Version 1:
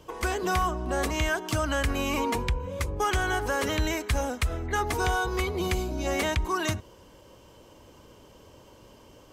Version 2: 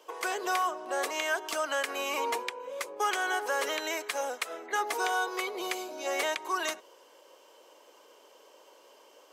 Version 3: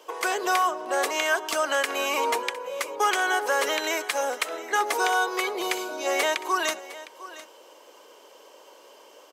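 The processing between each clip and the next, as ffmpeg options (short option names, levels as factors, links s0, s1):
-af "highpass=f=420:w=0.5412,highpass=f=420:w=1.3066,volume=0.841"
-af "aecho=1:1:708:0.15,volume=2"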